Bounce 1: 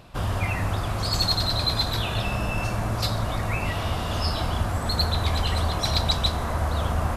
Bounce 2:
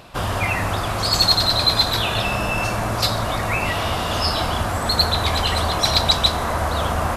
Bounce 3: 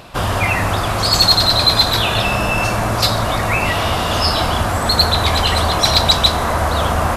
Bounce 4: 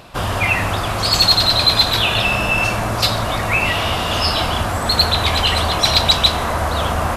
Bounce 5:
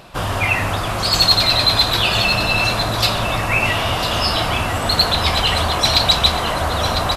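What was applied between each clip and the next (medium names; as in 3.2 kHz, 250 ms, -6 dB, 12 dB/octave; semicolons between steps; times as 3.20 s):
bass shelf 220 Hz -9 dB; trim +8 dB
saturation -5 dBFS, distortion -26 dB; trim +5 dB
dynamic bell 2.8 kHz, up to +6 dB, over -29 dBFS, Q 1.9; trim -2.5 dB
flange 0.95 Hz, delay 5.1 ms, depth 3.3 ms, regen -69%; on a send: delay 1002 ms -8.5 dB; on the sum: trim +3.5 dB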